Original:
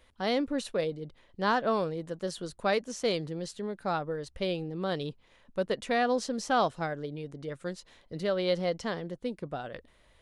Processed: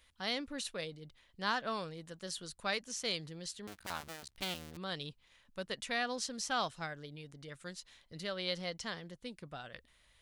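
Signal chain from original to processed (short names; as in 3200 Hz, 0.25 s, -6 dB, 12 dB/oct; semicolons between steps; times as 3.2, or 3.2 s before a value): 3.67–4.77 cycle switcher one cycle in 2, muted; passive tone stack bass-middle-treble 5-5-5; gain +7 dB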